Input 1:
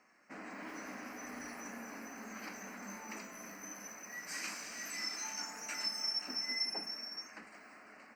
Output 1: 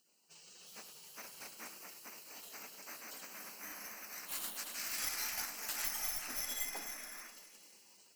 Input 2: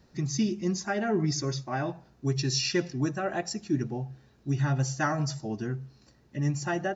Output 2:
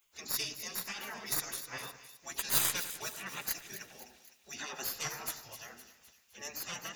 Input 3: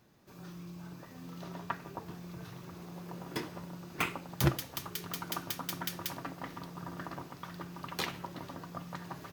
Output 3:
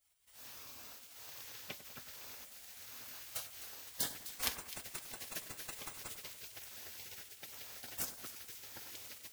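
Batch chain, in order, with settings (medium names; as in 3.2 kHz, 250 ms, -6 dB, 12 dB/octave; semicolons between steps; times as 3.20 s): tracing distortion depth 0.061 ms; tilt EQ +3.5 dB/octave; spectral gate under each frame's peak -15 dB weak; bass shelf 120 Hz +5.5 dB; on a send: two-band feedback delay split 2.1 kHz, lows 98 ms, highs 256 ms, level -12 dB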